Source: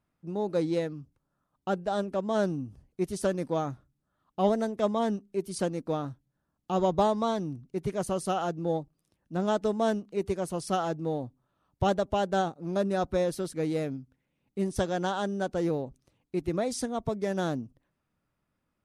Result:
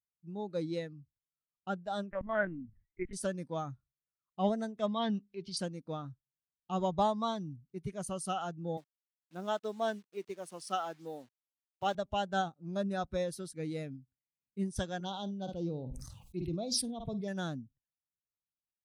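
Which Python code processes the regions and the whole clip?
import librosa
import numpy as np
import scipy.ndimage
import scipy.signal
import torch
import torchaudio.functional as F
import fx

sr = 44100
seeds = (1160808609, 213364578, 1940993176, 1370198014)

y = fx.chain(x, sr, fx.lowpass_res(hz=2000.0, q=6.3),
    fx.lpc_vocoder(seeds[0], excitation='pitch_kept', order=10), at=(2.11, 3.13))
y = fx.chain(y, sr, fx.lowpass(hz=4300.0, slope=24),
    fx.high_shelf(hz=2800.0, db=11.0),
    fx.transient(attack_db=-3, sustain_db=7), at=(4.86, 5.57))
y = fx.chain(y, sr, fx.delta_hold(step_db=-43.5),
    fx.highpass(hz=260.0, slope=12),
    fx.high_shelf(hz=9700.0, db=-6.0), at=(8.77, 11.95))
y = fx.chain(y, sr, fx.env_phaser(low_hz=280.0, high_hz=1800.0, full_db=-26.5),
    fx.room_flutter(wall_m=8.9, rt60_s=0.21),
    fx.sustainer(db_per_s=34.0), at=(15.0, 17.28))
y = fx.tone_stack(y, sr, knobs='5-5-5')
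y = fx.spectral_expand(y, sr, expansion=1.5)
y = F.gain(torch.from_numpy(y), 9.0).numpy()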